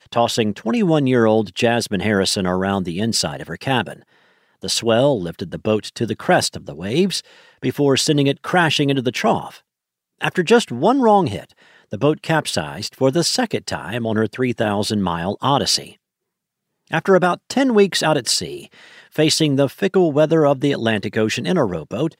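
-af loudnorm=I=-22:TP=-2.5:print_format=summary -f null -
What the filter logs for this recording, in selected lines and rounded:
Input Integrated:    -18.5 LUFS
Input True Peak:      -2.9 dBTP
Input LRA:             2.7 LU
Input Threshold:     -28.9 LUFS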